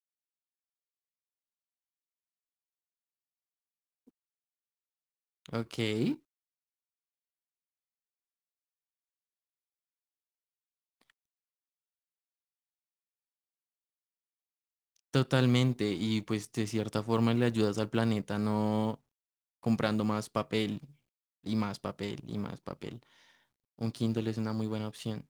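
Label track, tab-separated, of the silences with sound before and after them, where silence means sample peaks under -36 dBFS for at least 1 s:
6.140000	15.140000	silence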